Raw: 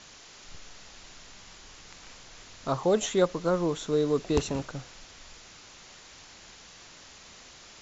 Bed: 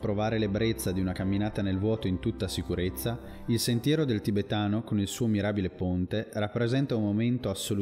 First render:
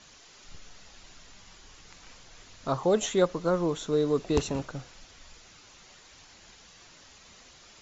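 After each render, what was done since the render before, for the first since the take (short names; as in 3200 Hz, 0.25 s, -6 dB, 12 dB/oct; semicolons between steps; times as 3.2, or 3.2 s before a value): denoiser 6 dB, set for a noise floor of -51 dBFS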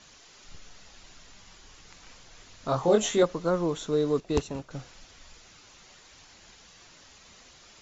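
2.69–3.23 doubler 24 ms -2 dB; 4.2–4.71 upward expander, over -40 dBFS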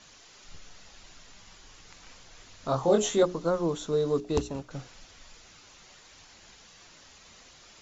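notches 60/120/180/240/300/360/420 Hz; dynamic EQ 2100 Hz, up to -5 dB, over -48 dBFS, Q 1.4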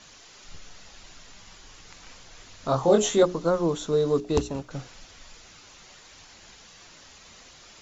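gain +3.5 dB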